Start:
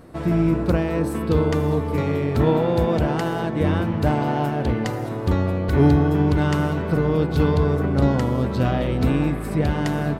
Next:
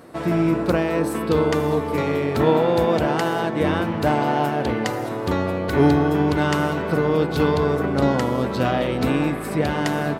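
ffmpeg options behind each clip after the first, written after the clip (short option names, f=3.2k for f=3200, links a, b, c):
-af "highpass=f=350:p=1,volume=4.5dB"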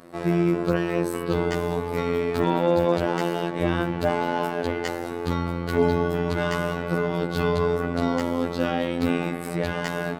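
-af "afftfilt=real='hypot(re,im)*cos(PI*b)':imag='0':win_size=2048:overlap=0.75,asoftclip=type=hard:threshold=-7.5dB"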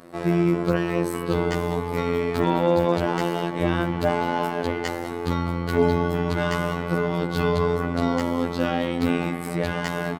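-filter_complex "[0:a]asplit=2[a][b];[b]adelay=198.3,volume=-15dB,highshelf=f=4k:g=-4.46[c];[a][c]amix=inputs=2:normalize=0,volume=1dB"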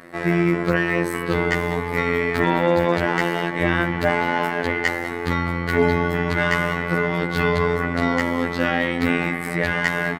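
-af "equalizer=f=1.9k:t=o:w=0.67:g=13,volume=1dB"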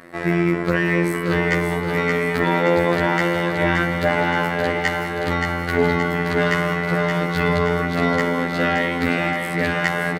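-af "aecho=1:1:574|1148|1722|2296|2870|3444|4018|4592:0.562|0.326|0.189|0.11|0.0636|0.0369|0.0214|0.0124"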